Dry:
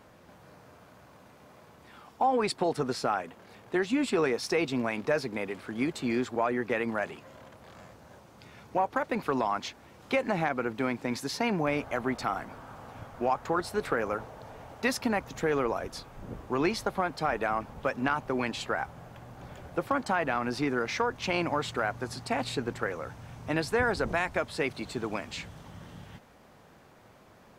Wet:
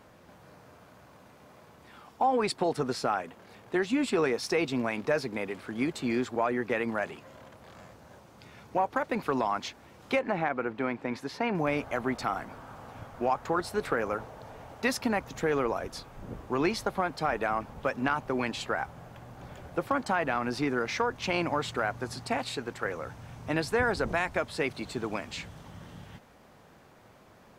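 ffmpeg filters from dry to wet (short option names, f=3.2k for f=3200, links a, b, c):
-filter_complex "[0:a]asettb=1/sr,asplit=3[a][b][c];[a]atrim=end=10.194[d];[b]atrim=start=10.19:end=11.55,asetpts=PTS-STARTPTS,afade=t=in:d=0.004:c=qsin,afade=t=out:st=1.356:d=0.004:c=qsin,bass=f=250:g=-4,treble=f=4k:g=-14[e];[c]atrim=start=11.546[f];[d][e]acrossfade=d=0.004:c1=hsin:c2=qsin[g];[g][f]acrossfade=d=0.004:c1=qsin:c2=hsin,asettb=1/sr,asplit=3[h][i][j];[h]atrim=end=22.384[k];[i]atrim=start=22.38:end=22.85,asetpts=PTS-STARTPTS,afade=t=in:d=0.004:c=qsin,afade=t=out:st=0.466:d=0.004:c=qsin,lowshelf=f=370:g=-7.5[l];[j]atrim=start=22.846[m];[k][l]acrossfade=d=0.004:c1=hsin:c2=qsin[n];[n][m]acrossfade=d=0.004:c1=qsin:c2=hsin"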